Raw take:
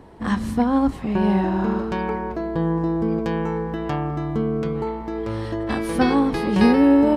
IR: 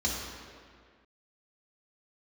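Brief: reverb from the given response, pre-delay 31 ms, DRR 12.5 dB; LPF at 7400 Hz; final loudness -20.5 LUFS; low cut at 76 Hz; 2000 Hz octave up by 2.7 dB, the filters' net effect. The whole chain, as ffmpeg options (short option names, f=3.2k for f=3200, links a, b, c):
-filter_complex "[0:a]highpass=76,lowpass=7.4k,equalizer=f=2k:t=o:g=3.5,asplit=2[a][b];[1:a]atrim=start_sample=2205,adelay=31[c];[b][c]afir=irnorm=-1:irlink=0,volume=-20.5dB[d];[a][d]amix=inputs=2:normalize=0,volume=1dB"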